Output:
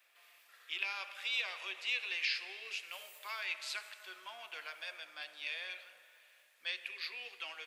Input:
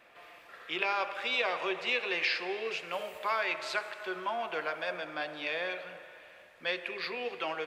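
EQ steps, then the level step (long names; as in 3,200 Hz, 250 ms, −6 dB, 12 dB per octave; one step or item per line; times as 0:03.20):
mains-hum notches 60/120/180 Hz
dynamic equaliser 2,700 Hz, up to +4 dB, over −44 dBFS, Q 1.3
first difference
+1.0 dB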